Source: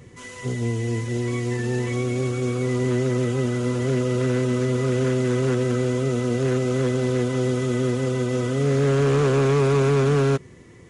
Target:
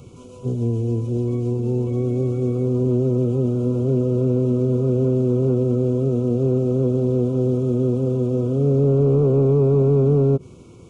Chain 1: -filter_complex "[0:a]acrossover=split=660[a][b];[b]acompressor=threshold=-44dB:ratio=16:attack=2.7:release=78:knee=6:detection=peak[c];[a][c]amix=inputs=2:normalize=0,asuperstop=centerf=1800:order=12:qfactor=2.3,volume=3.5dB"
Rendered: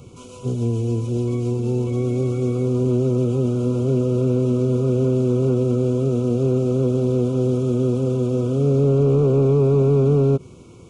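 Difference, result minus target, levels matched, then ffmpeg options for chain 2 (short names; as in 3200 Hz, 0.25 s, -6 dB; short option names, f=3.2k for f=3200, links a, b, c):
compressor: peak gain reduction -8.5 dB
-filter_complex "[0:a]acrossover=split=660[a][b];[b]acompressor=threshold=-53dB:ratio=16:attack=2.7:release=78:knee=6:detection=peak[c];[a][c]amix=inputs=2:normalize=0,asuperstop=centerf=1800:order=12:qfactor=2.3,volume=3.5dB"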